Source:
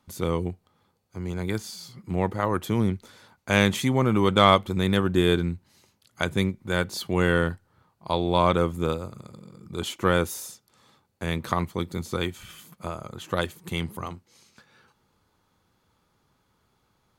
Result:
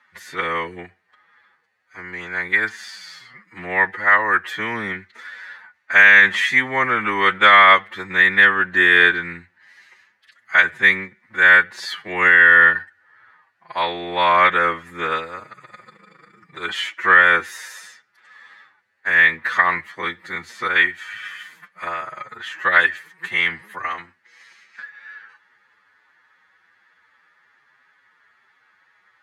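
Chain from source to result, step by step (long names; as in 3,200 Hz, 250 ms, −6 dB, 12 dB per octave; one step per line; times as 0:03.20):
phase-vocoder stretch with locked phases 1.7×
resonant band-pass 1,800 Hz, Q 8.2
boost into a limiter +28.5 dB
level −1 dB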